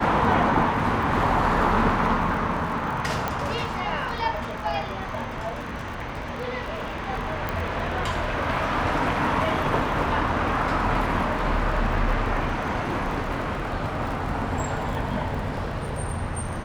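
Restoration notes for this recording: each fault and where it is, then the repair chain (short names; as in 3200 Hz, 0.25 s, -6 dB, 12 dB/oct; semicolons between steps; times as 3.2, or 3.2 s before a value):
crackle 34/s -32 dBFS
3.28 pop -12 dBFS
7.49 pop -14 dBFS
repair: de-click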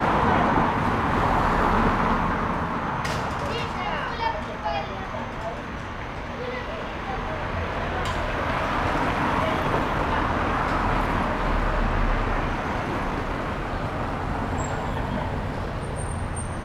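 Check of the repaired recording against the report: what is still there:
none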